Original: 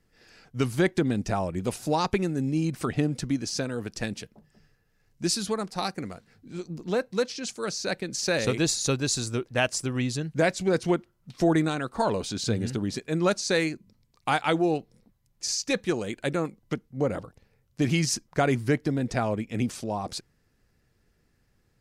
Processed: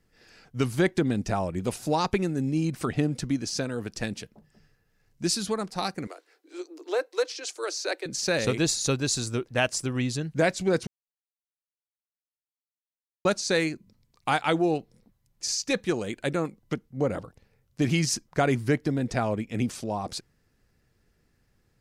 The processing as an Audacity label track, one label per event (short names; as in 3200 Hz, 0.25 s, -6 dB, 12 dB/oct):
6.070000	8.060000	steep high-pass 300 Hz 96 dB/oct
10.870000	13.250000	mute